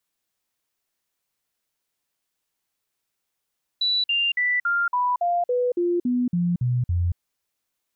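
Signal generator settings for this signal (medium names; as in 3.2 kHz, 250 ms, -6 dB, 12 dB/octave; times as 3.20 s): stepped sine 3.95 kHz down, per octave 2, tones 12, 0.23 s, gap 0.05 s -19 dBFS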